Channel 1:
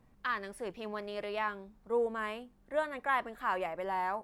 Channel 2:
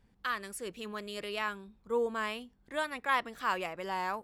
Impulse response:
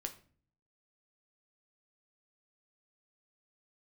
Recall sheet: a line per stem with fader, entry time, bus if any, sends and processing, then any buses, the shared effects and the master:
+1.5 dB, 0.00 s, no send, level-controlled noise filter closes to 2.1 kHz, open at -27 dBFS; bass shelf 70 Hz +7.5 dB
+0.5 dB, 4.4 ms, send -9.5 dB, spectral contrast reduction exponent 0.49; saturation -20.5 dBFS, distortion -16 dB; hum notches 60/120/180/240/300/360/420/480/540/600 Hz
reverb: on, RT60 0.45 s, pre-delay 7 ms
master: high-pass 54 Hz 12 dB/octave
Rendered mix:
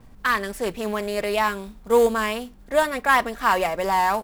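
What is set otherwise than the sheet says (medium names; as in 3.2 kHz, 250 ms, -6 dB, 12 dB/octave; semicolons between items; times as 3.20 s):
stem 1 +1.5 dB -> +12.5 dB; master: missing high-pass 54 Hz 12 dB/octave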